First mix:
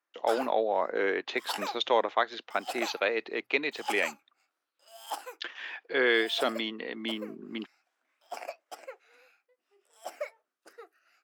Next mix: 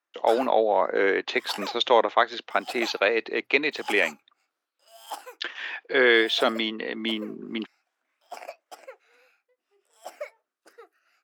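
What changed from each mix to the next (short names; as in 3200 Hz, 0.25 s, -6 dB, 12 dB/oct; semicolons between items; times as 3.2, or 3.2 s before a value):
speech +6.0 dB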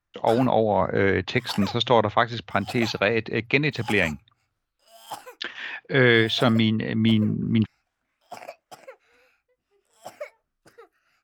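master: remove HPF 320 Hz 24 dB/oct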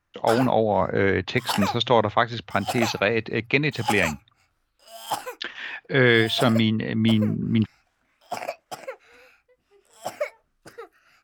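background +8.5 dB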